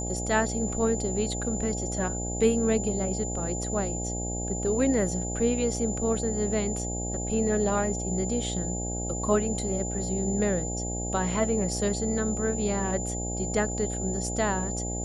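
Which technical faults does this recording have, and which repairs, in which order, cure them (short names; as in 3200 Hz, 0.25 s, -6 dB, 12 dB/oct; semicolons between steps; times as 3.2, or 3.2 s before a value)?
buzz 60 Hz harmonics 14 -33 dBFS
tone 7100 Hz -34 dBFS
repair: notch 7100 Hz, Q 30; de-hum 60 Hz, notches 14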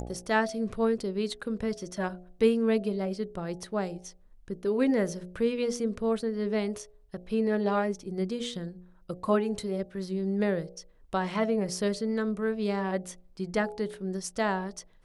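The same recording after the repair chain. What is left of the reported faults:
none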